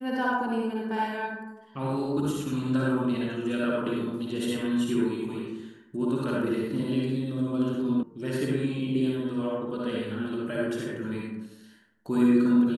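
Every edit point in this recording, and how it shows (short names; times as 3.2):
8.03 sound cut off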